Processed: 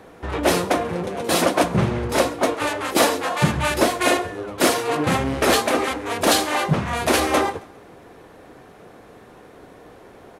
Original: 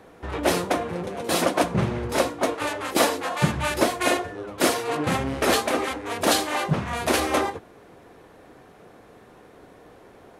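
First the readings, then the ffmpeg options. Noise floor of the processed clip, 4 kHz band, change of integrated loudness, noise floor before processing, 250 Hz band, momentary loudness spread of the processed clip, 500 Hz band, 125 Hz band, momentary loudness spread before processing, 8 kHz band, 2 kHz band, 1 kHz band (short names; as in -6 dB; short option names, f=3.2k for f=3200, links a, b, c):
-46 dBFS, +3.5 dB, +3.5 dB, -50 dBFS, +3.5 dB, 5 LU, +3.5 dB, +3.5 dB, 6 LU, +3.5 dB, +3.5 dB, +3.5 dB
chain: -filter_complex "[0:a]acontrast=85,asplit=2[a][b];[b]aecho=0:1:135|270|405:0.075|0.0292|0.0114[c];[a][c]amix=inputs=2:normalize=0,volume=-3dB"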